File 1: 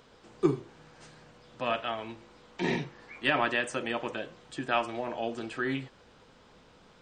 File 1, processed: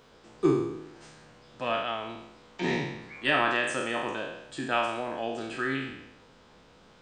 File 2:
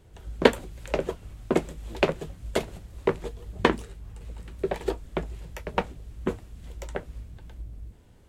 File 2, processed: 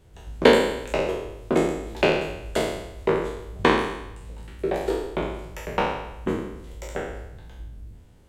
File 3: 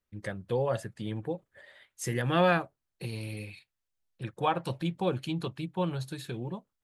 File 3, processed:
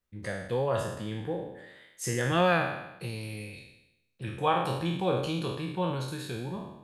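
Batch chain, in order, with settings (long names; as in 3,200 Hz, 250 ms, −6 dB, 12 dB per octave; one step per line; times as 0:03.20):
peak hold with a decay on every bin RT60 0.89 s
level −1 dB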